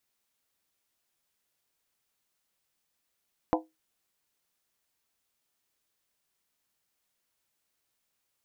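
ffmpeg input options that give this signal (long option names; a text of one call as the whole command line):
ffmpeg -f lavfi -i "aevalsrc='0.075*pow(10,-3*t/0.21)*sin(2*PI*318*t)+0.0668*pow(10,-3*t/0.166)*sin(2*PI*506.9*t)+0.0596*pow(10,-3*t/0.144)*sin(2*PI*679.2*t)+0.0531*pow(10,-3*t/0.139)*sin(2*PI*730.1*t)+0.0473*pow(10,-3*t/0.129)*sin(2*PI*843.7*t)+0.0422*pow(10,-3*t/0.123)*sin(2*PI*927.9*t)+0.0376*pow(10,-3*t/0.118)*sin(2*PI*1003.6*t)':duration=0.63:sample_rate=44100" out.wav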